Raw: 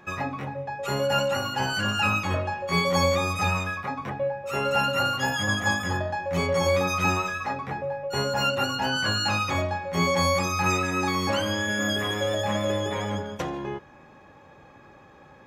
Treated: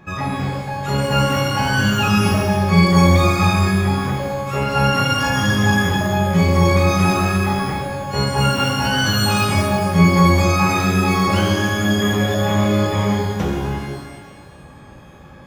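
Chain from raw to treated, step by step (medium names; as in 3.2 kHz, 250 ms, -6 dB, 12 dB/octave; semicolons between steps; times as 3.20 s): tone controls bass +11 dB, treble -1 dB; pitch-shifted reverb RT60 1.3 s, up +12 st, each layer -8 dB, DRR -1.5 dB; trim +1 dB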